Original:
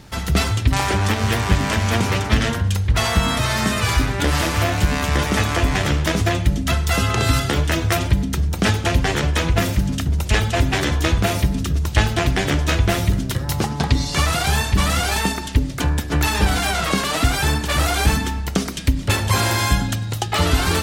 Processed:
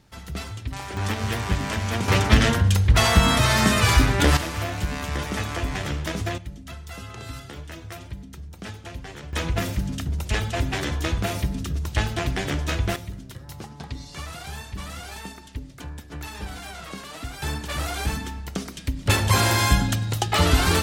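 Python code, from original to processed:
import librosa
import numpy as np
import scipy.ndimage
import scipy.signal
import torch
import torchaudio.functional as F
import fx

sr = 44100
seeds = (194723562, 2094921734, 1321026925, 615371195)

y = fx.gain(x, sr, db=fx.steps((0.0, -14.5), (0.97, -7.0), (2.08, 1.0), (4.37, -9.0), (6.38, -19.0), (9.33, -7.0), (12.96, -17.0), (17.42, -9.5), (19.06, -1.0)))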